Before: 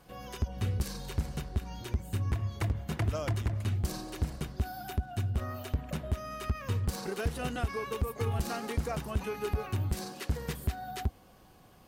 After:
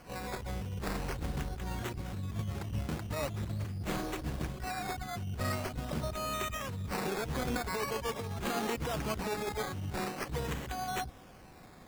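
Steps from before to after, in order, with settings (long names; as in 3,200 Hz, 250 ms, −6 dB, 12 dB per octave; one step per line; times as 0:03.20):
compressor whose output falls as the input rises −36 dBFS, ratio −1
pitch-shifted copies added +7 semitones −12 dB, +12 semitones −9 dB
sample-and-hold swept by an LFO 12×, swing 60% 0.44 Hz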